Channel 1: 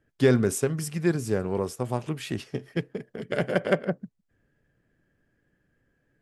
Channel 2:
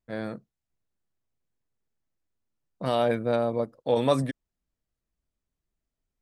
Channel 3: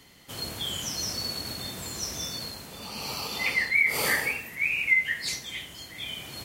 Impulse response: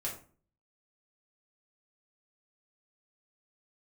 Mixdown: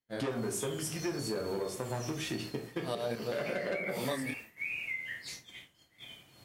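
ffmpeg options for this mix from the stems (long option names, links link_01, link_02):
-filter_complex "[0:a]asoftclip=type=tanh:threshold=-19.5dB,highpass=frequency=280:poles=1,volume=2.5dB,asplit=3[link_01][link_02][link_03];[link_02]volume=-7dB[link_04];[1:a]aexciter=amount=1.3:drive=9.2:freq=3700,flanger=delay=22.5:depth=4.7:speed=1.5,volume=-1dB[link_05];[2:a]volume=-9.5dB,asplit=2[link_06][link_07];[link_07]volume=-6dB[link_08];[link_03]apad=whole_len=273976[link_09];[link_05][link_09]sidechaincompress=threshold=-40dB:ratio=8:attack=10:release=126[link_10];[link_01][link_06]amix=inputs=2:normalize=0,highshelf=frequency=5600:gain=-6.5,acompressor=threshold=-47dB:ratio=2,volume=0dB[link_11];[3:a]atrim=start_sample=2205[link_12];[link_04][link_08]amix=inputs=2:normalize=0[link_13];[link_13][link_12]afir=irnorm=-1:irlink=0[link_14];[link_10][link_11][link_14]amix=inputs=3:normalize=0,agate=range=-33dB:threshold=-40dB:ratio=3:detection=peak,acompressor=threshold=-31dB:ratio=6"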